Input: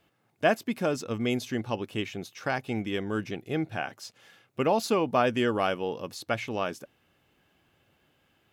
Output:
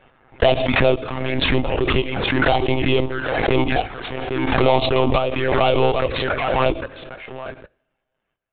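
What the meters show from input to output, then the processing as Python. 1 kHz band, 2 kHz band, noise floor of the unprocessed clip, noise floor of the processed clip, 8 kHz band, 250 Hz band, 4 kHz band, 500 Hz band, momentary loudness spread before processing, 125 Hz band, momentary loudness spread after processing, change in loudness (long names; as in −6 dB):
+9.5 dB, +11.0 dB, −70 dBFS, −77 dBFS, below −30 dB, +7.5 dB, +13.0 dB, +10.5 dB, 11 LU, +12.5 dB, 12 LU, +10.0 dB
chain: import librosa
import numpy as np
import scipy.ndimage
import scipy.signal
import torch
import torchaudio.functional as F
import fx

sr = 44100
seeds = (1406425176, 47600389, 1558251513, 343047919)

p1 = scipy.signal.sosfilt(scipy.signal.butter(2, 2300.0, 'lowpass', fs=sr, output='sos'), x)
p2 = fx.low_shelf(p1, sr, hz=490.0, db=-5.5)
p3 = fx.step_gate(p2, sr, bpm=142, pattern='...xxx.xx.', floor_db=-12.0, edge_ms=4.5)
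p4 = fx.leveller(p3, sr, passes=5)
p5 = fx.rider(p4, sr, range_db=4, speed_s=2.0)
p6 = p4 + (p5 * 10.0 ** (1.5 / 20.0))
p7 = fx.highpass(p6, sr, hz=100.0, slope=6)
p8 = p7 + 10.0 ** (-14.5 / 20.0) * np.pad(p7, (int(809 * sr / 1000.0), 0))[:len(p7)]
p9 = fx.env_flanger(p8, sr, rest_ms=7.1, full_db=-11.5)
p10 = fx.lpc_monotone(p9, sr, seeds[0], pitch_hz=130.0, order=16)
p11 = fx.dynamic_eq(p10, sr, hz=200.0, q=0.88, threshold_db=-28.0, ratio=4.0, max_db=-6)
p12 = fx.rev_double_slope(p11, sr, seeds[1], early_s=0.5, late_s=2.8, knee_db=-28, drr_db=19.0)
p13 = fx.pre_swell(p12, sr, db_per_s=26.0)
y = p13 * 10.0 ** (-2.0 / 20.0)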